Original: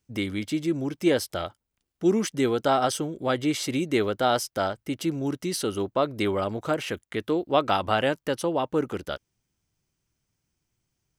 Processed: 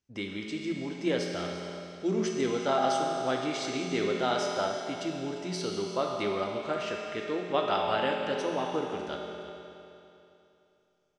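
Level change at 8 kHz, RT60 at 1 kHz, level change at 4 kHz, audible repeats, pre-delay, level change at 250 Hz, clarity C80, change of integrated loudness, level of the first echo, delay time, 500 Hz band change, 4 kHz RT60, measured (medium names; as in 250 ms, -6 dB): -6.5 dB, 2.9 s, -3.5 dB, 1, 5 ms, -6.5 dB, 2.0 dB, -4.5 dB, -14.5 dB, 348 ms, -4.0 dB, 2.8 s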